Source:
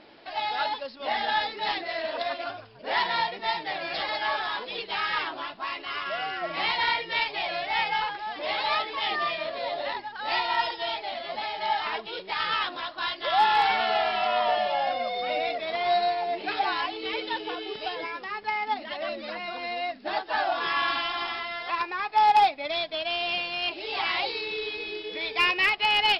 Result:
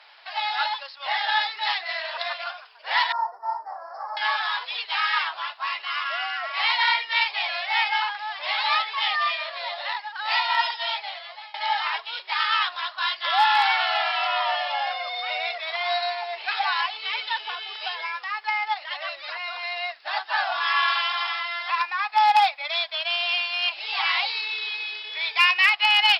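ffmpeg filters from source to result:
-filter_complex "[0:a]asettb=1/sr,asplit=3[a][b][c];[a]atrim=end=3.124[d];[b]atrim=start=3.12:end=4.17,asetpts=PTS-STARTPTS,afade=t=in:d=0.004:c=qsin,afade=t=out:st=1.046:d=0.004:c=qsin,asuperstop=centerf=3000:order=8:qfactor=0.53[e];[c]atrim=start=4.166[f];[d][e]acrossfade=d=0.004:c1=hsin:c2=qsin[g];[g][f]acrossfade=d=0.004:c1=qsin:c2=hsin,asplit=2[h][i];[h]atrim=end=11.54,asetpts=PTS-STARTPTS,afade=t=out:st=10.96:d=0.58:silence=0.0891251[j];[i]atrim=start=11.54,asetpts=PTS-STARTPTS,afade=t=in:d=0.004:c=hsin:silence=0.0891251[k];[j][k]concat=n=2:v=0:a=1,highpass=f=880:w=0.5412,highpass=f=880:w=1.3066,volume=5dB"

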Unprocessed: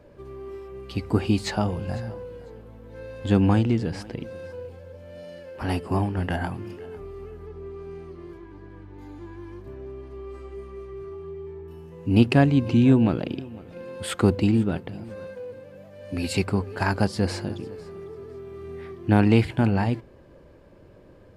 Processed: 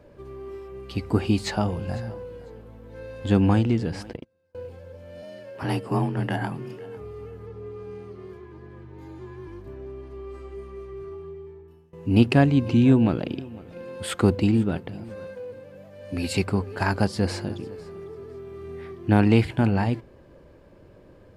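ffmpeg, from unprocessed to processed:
-filter_complex "[0:a]asettb=1/sr,asplit=3[a][b][c];[a]atrim=end=4.134[d];[b]atrim=start=4.13:end=4.55,asetpts=PTS-STARTPTS,afade=t=in:d=0.004:c=qsin,afade=t=out:st=0.416:d=0.004:c=qsin,agate=range=-33dB:threshold=-32dB:ratio=16:release=100:detection=peak[e];[c]atrim=start=4.546[f];[d][e]acrossfade=d=0.004:c1=hsin:c2=qsin[g];[g][f]acrossfade=d=0.004:c1=qsin:c2=hsin,asettb=1/sr,asplit=3[h][i][j];[h]atrim=end=5.224[k];[i]atrim=start=5.22:end=9.47,asetpts=PTS-STARTPTS,afade=t=in:d=0.004:c=qsin,afade=t=out:st=4.246:d=0.004:c=qsin,afreqshift=27[l];[j]atrim=start=9.466[m];[k][l]acrossfade=d=0.004:c1=hsin:c2=qsin[n];[n][m]acrossfade=d=0.004:c1=qsin:c2=hsin,asplit=2[o][p];[o]atrim=end=11.93,asetpts=PTS-STARTPTS,afade=t=out:st=11.14:d=0.79:silence=0.0944061[q];[p]atrim=start=11.93,asetpts=PTS-STARTPTS,afade=t=in:d=0.004:c=hsin:silence=0.0944061[r];[q][r]concat=n=2:v=0:a=1"

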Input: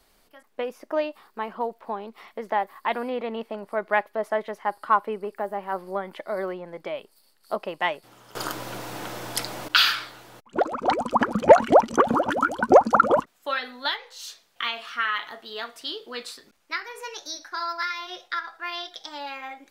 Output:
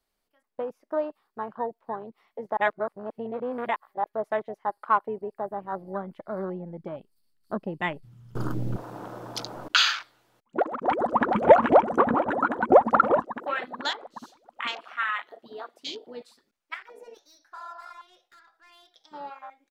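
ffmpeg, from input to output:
-filter_complex "[0:a]asettb=1/sr,asplit=3[a][b][c];[a]atrim=end=5.264[d];[b]atrim=start=5.26:end=8.76,asetpts=PTS-STARTPTS,afade=t=in:d=0.004:c=qsin,afade=t=out:st=3.496:d=0.004:c=qsin,asubboost=boost=11:cutoff=220[e];[c]atrim=start=8.756[f];[d][e]acrossfade=d=0.004:c1=hsin:c2=qsin[g];[g][f]acrossfade=d=0.004:c1=qsin:c2=hsin,asplit=2[h][i];[i]afade=t=in:st=10.58:d=0.01,afade=t=out:st=11.28:d=0.01,aecho=0:1:430|860|1290|1720|2150|2580|3010|3440|3870|4300|4730|5160:0.749894|0.562421|0.421815|0.316362|0.237271|0.177953|0.133465|0.100099|0.0750741|0.0563056|0.0422292|0.0316719[j];[h][j]amix=inputs=2:normalize=0,asettb=1/sr,asplit=3[k][l][m];[k]atrim=end=11.854[n];[l]atrim=start=11.85:end=12.91,asetpts=PTS-STARTPTS,afade=t=in:d=0.004:c=qsin,afade=t=out:st=1.056:d=0.004:c=qsin,equalizer=f=4.1k:t=o:w=1.4:g=-7[o];[m]atrim=start=12.906[p];[n][o]acrossfade=d=0.004:c1=hsin:c2=qsin[q];[q][p]acrossfade=d=0.004:c1=qsin:c2=hsin,asettb=1/sr,asplit=3[r][s][t];[r]atrim=end=14.994[u];[s]atrim=start=14.99:end=16.05,asetpts=PTS-STARTPTS,afade=t=in:d=0.004:c=qsin,afade=t=out:st=1.056:d=0.004:c=qsin,highpass=120[v];[t]atrim=start=16.046[w];[u][v]acrossfade=d=0.004:c1=hsin:c2=qsin[x];[x][w]acrossfade=d=0.004:c1=qsin:c2=hsin,asettb=1/sr,asplit=3[y][z][aa];[y]atrim=end=16.744[ab];[z]atrim=start=16.74:end=18.89,asetpts=PTS-STARTPTS,afade=t=in:d=0.004:c=qsin,afade=t=out:st=2.146:d=0.004:c=qsin,aeval=exprs='(tanh(44.7*val(0)+0.05)-tanh(0.05))/44.7':c=same[ac];[aa]atrim=start=18.886[ad];[ab][ac]acrossfade=d=0.004:c1=hsin:c2=qsin[ae];[ae][ad]acrossfade=d=0.004:c1=qsin:c2=hsin,asplit=3[af][ag][ah];[af]atrim=end=2.572[ai];[ag]atrim=start=2.568:end=4.042,asetpts=PTS-STARTPTS,areverse[aj];[ah]atrim=start=4.038[ak];[ai][aj]acrossfade=d=0.004:c1=hsin:c2=hsin[al];[al][ak]acrossfade=d=0.004:c1=hsin:c2=hsin,afwtdn=0.0251,volume=-2dB"

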